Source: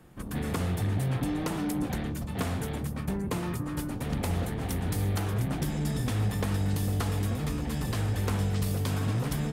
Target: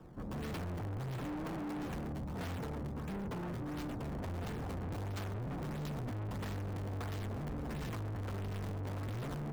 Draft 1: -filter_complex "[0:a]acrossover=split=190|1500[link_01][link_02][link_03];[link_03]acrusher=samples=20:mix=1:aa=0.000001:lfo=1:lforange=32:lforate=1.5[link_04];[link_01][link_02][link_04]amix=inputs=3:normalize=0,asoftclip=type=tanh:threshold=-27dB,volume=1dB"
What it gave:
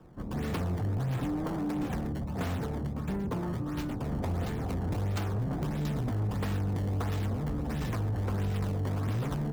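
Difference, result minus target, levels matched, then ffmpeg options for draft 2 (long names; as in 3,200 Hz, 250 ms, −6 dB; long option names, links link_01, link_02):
soft clipping: distortion −8 dB
-filter_complex "[0:a]acrossover=split=190|1500[link_01][link_02][link_03];[link_03]acrusher=samples=20:mix=1:aa=0.000001:lfo=1:lforange=32:lforate=1.5[link_04];[link_01][link_02][link_04]amix=inputs=3:normalize=0,asoftclip=type=tanh:threshold=-39dB,volume=1dB"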